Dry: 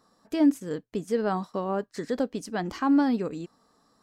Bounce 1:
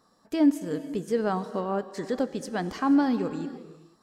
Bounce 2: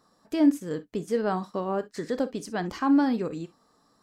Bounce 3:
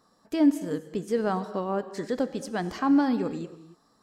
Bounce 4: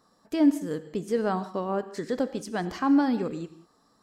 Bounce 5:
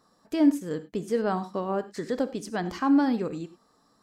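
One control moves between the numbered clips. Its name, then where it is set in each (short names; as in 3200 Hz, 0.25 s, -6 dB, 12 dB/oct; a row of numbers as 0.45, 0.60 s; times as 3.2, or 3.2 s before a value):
non-linear reverb, gate: 520, 80, 310, 210, 120 ms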